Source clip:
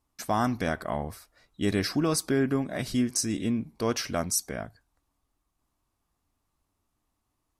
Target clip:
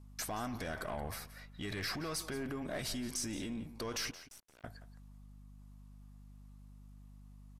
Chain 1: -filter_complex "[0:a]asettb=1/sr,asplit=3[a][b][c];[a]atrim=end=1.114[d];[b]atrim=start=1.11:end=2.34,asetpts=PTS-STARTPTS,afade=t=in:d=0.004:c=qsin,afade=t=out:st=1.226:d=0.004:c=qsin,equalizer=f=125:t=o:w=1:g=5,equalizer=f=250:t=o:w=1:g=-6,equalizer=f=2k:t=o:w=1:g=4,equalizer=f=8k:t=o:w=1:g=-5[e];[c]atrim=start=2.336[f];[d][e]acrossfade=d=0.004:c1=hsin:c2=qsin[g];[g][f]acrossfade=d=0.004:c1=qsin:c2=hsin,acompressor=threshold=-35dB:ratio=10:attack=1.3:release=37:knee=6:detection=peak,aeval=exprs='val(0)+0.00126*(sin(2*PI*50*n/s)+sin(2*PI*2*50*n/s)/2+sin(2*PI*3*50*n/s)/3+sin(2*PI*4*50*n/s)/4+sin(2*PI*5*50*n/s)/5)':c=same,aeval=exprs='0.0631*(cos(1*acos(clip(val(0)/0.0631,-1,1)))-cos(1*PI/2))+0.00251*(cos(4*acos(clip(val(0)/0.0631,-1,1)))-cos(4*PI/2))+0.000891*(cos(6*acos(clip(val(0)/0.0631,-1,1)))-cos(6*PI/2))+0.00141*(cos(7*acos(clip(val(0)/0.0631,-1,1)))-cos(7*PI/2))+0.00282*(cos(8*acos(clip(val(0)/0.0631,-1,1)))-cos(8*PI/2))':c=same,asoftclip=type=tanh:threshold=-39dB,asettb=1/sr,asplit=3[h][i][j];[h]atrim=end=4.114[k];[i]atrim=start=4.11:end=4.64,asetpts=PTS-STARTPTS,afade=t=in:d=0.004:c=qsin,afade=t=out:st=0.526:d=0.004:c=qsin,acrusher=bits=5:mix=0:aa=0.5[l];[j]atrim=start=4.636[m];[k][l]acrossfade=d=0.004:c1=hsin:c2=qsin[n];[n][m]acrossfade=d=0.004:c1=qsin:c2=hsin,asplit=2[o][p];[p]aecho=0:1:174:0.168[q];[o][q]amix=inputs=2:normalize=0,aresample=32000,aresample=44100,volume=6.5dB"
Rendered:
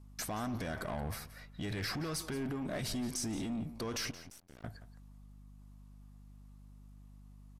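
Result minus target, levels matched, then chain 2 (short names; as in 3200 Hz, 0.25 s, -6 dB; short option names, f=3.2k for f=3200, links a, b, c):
125 Hz band +3.5 dB
-filter_complex "[0:a]asettb=1/sr,asplit=3[a][b][c];[a]atrim=end=1.114[d];[b]atrim=start=1.11:end=2.34,asetpts=PTS-STARTPTS,afade=t=in:d=0.004:c=qsin,afade=t=out:st=1.226:d=0.004:c=qsin,equalizer=f=125:t=o:w=1:g=5,equalizer=f=250:t=o:w=1:g=-6,equalizer=f=2k:t=o:w=1:g=4,equalizer=f=8k:t=o:w=1:g=-5[e];[c]atrim=start=2.336[f];[d][e]acrossfade=d=0.004:c1=hsin:c2=qsin[g];[g][f]acrossfade=d=0.004:c1=qsin:c2=hsin,acompressor=threshold=-35dB:ratio=10:attack=1.3:release=37:knee=6:detection=peak,equalizer=f=130:w=0.45:g=-8,aeval=exprs='val(0)+0.00126*(sin(2*PI*50*n/s)+sin(2*PI*2*50*n/s)/2+sin(2*PI*3*50*n/s)/3+sin(2*PI*4*50*n/s)/4+sin(2*PI*5*50*n/s)/5)':c=same,aeval=exprs='0.0631*(cos(1*acos(clip(val(0)/0.0631,-1,1)))-cos(1*PI/2))+0.00251*(cos(4*acos(clip(val(0)/0.0631,-1,1)))-cos(4*PI/2))+0.000891*(cos(6*acos(clip(val(0)/0.0631,-1,1)))-cos(6*PI/2))+0.00141*(cos(7*acos(clip(val(0)/0.0631,-1,1)))-cos(7*PI/2))+0.00282*(cos(8*acos(clip(val(0)/0.0631,-1,1)))-cos(8*PI/2))':c=same,asoftclip=type=tanh:threshold=-39dB,asettb=1/sr,asplit=3[h][i][j];[h]atrim=end=4.114[k];[i]atrim=start=4.11:end=4.64,asetpts=PTS-STARTPTS,afade=t=in:d=0.004:c=qsin,afade=t=out:st=0.526:d=0.004:c=qsin,acrusher=bits=5:mix=0:aa=0.5[l];[j]atrim=start=4.636[m];[k][l]acrossfade=d=0.004:c1=hsin:c2=qsin[n];[n][m]acrossfade=d=0.004:c1=qsin:c2=hsin,asplit=2[o][p];[p]aecho=0:1:174:0.168[q];[o][q]amix=inputs=2:normalize=0,aresample=32000,aresample=44100,volume=6.5dB"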